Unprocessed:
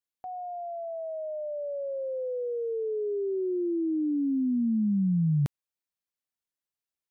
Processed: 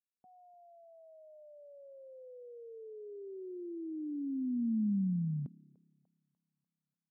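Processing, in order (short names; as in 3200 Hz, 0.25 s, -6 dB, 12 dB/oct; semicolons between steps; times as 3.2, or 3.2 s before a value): darkening echo 0.296 s, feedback 61%, low-pass 920 Hz, level -22 dB; band-pass sweep 210 Hz -> 1100 Hz, 5.38–6.3; gain -5.5 dB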